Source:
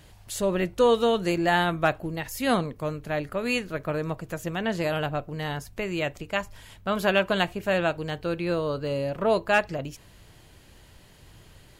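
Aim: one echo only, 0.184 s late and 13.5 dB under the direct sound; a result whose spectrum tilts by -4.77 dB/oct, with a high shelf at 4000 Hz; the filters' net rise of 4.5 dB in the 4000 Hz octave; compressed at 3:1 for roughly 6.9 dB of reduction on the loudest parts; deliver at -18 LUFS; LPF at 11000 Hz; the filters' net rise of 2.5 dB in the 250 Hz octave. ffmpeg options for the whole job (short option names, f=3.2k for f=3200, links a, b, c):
-af "lowpass=11k,equalizer=f=250:t=o:g=3.5,highshelf=f=4k:g=4,equalizer=f=4k:t=o:g=4,acompressor=threshold=-24dB:ratio=3,aecho=1:1:184:0.211,volume=11dB"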